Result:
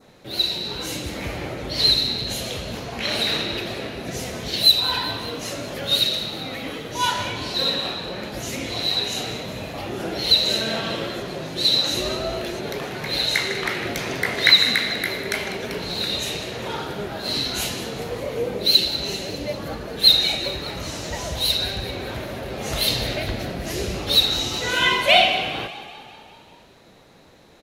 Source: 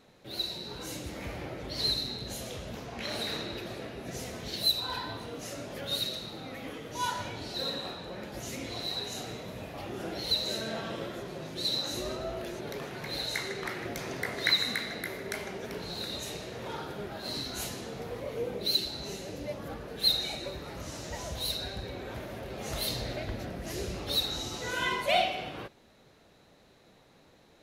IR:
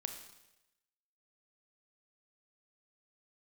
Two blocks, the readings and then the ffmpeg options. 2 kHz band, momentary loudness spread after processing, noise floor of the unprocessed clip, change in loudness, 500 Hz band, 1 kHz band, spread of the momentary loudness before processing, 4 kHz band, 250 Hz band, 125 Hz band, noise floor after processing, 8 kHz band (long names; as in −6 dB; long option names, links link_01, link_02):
+12.0 dB, 15 LU, −60 dBFS, +12.0 dB, +9.0 dB, +9.5 dB, 13 LU, +13.0 dB, +9.0 dB, +9.0 dB, −49 dBFS, +9.5 dB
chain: -filter_complex "[0:a]acontrast=70,asplit=8[link_01][link_02][link_03][link_04][link_05][link_06][link_07][link_08];[link_02]adelay=197,afreqshift=31,volume=-15dB[link_09];[link_03]adelay=394,afreqshift=62,volume=-18.9dB[link_10];[link_04]adelay=591,afreqshift=93,volume=-22.8dB[link_11];[link_05]adelay=788,afreqshift=124,volume=-26.6dB[link_12];[link_06]adelay=985,afreqshift=155,volume=-30.5dB[link_13];[link_07]adelay=1182,afreqshift=186,volume=-34.4dB[link_14];[link_08]adelay=1379,afreqshift=217,volume=-38.3dB[link_15];[link_01][link_09][link_10][link_11][link_12][link_13][link_14][link_15]amix=inputs=8:normalize=0,adynamicequalizer=threshold=0.01:dfrequency=2900:dqfactor=1.3:tfrequency=2900:tqfactor=1.3:attack=5:release=100:ratio=0.375:range=3.5:mode=boostabove:tftype=bell,volume=2dB"